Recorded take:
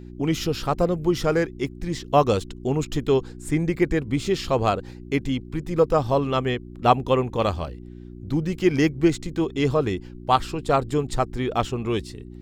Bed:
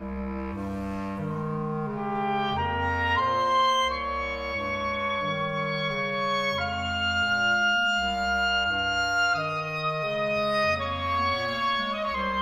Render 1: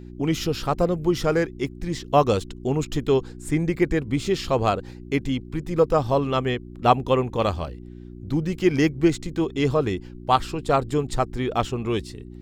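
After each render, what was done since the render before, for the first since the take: no audible change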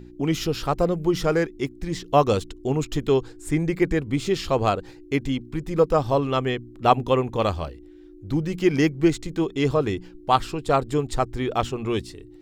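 de-hum 60 Hz, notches 4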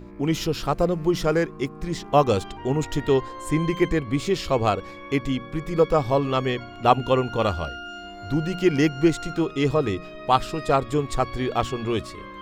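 add bed -13 dB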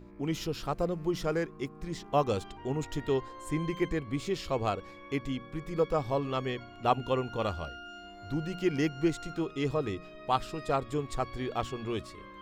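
trim -9 dB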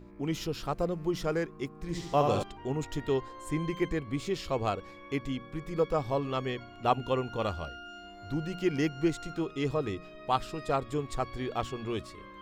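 1.76–2.43 s: flutter echo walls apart 11.9 m, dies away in 0.93 s

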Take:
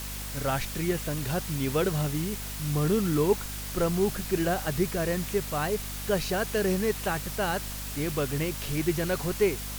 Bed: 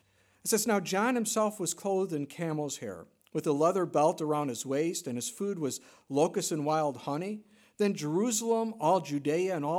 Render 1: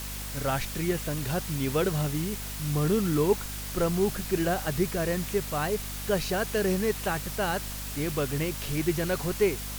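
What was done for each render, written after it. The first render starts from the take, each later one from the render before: no audible change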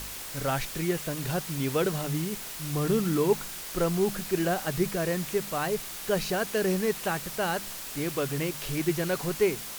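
de-hum 50 Hz, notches 5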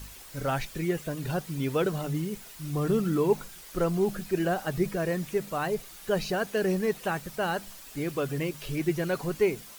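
noise reduction 10 dB, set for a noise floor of -39 dBFS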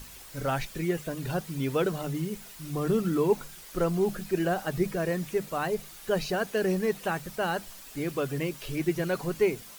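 hum notches 50/100/150/200 Hz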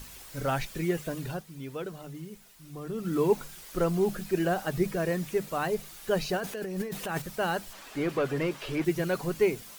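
1.17–3.22 s: dip -10 dB, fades 0.27 s; 6.37–7.22 s: compressor with a negative ratio -33 dBFS; 7.73–8.85 s: overdrive pedal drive 17 dB, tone 1.3 kHz, clips at -18 dBFS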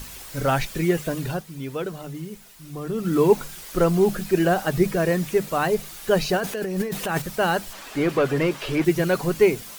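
trim +7.5 dB

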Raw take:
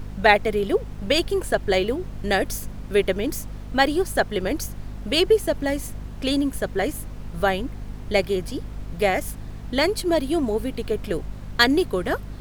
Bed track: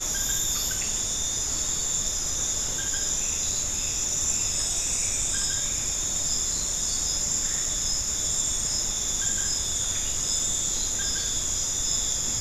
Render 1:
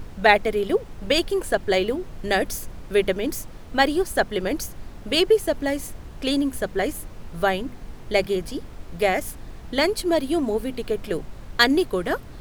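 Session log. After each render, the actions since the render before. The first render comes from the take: hum notches 50/100/150/200/250 Hz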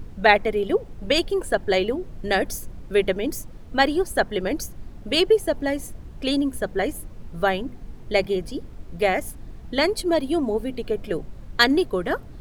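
noise reduction 8 dB, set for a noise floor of -40 dBFS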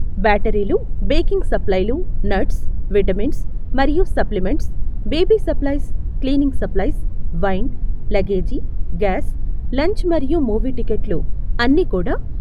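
RIAA curve playback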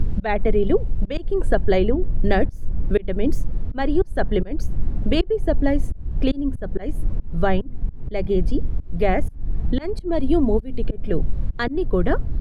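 slow attack 317 ms; three bands compressed up and down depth 40%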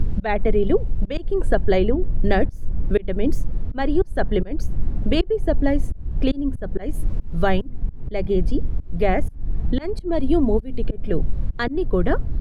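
6.93–7.70 s: treble shelf 2.9 kHz +7.5 dB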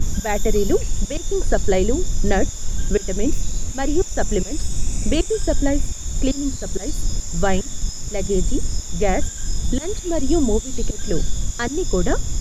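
add bed track -7 dB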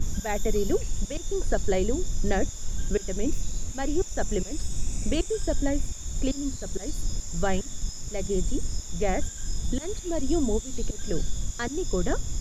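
trim -7 dB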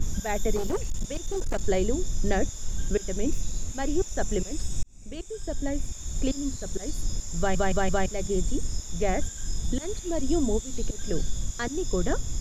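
0.56–1.61 s: overload inside the chain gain 23 dB; 4.83–6.10 s: fade in linear; 7.38 s: stutter in place 0.17 s, 4 plays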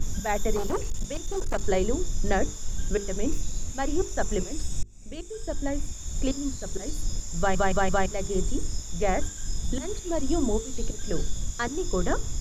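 dynamic bell 1.1 kHz, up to +6 dB, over -45 dBFS, Q 1.4; hum notches 50/100/150/200/250/300/350/400/450 Hz

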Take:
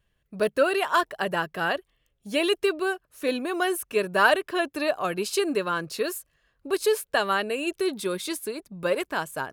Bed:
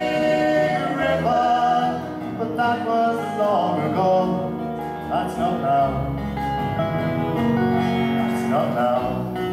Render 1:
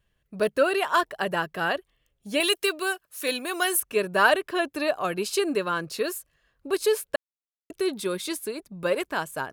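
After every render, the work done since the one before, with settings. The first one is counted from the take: 2.40–3.80 s: tilt EQ +3 dB/octave; 7.16–7.70 s: mute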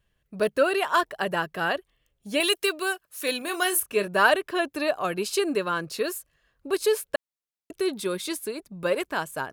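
3.38–4.08 s: doubling 30 ms -11 dB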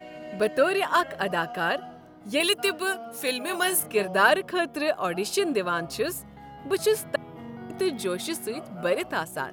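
add bed -20.5 dB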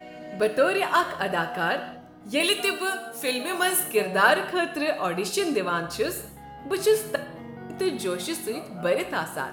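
gated-style reverb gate 250 ms falling, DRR 7 dB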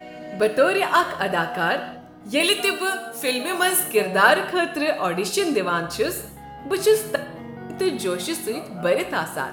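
trim +3.5 dB

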